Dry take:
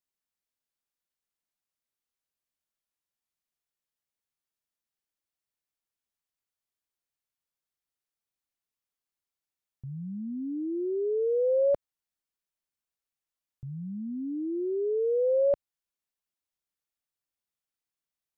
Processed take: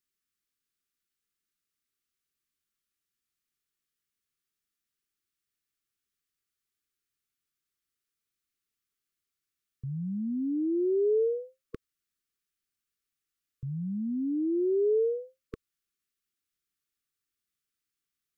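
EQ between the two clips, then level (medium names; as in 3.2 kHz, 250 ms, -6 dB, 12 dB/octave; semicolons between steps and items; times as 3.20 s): brick-wall FIR band-stop 470–1100 Hz; +3.5 dB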